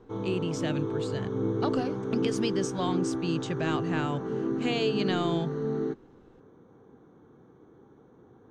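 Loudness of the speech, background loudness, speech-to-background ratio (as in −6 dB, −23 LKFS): −33.0 LKFS, −31.5 LKFS, −1.5 dB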